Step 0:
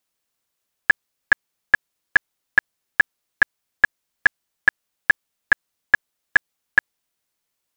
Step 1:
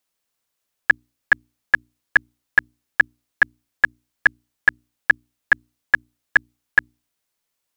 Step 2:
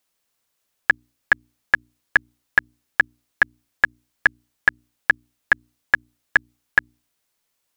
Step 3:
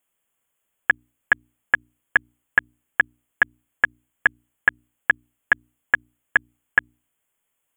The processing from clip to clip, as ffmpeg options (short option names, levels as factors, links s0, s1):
-af "bandreject=f=60:t=h:w=6,bandreject=f=120:t=h:w=6,bandreject=f=180:t=h:w=6,bandreject=f=240:t=h:w=6,bandreject=f=300:t=h:w=6,bandreject=f=360:t=h:w=6"
-af "acompressor=threshold=0.158:ratio=6,volume=1.5"
-af "asuperstop=centerf=4800:order=20:qfactor=1.5,volume=0.891"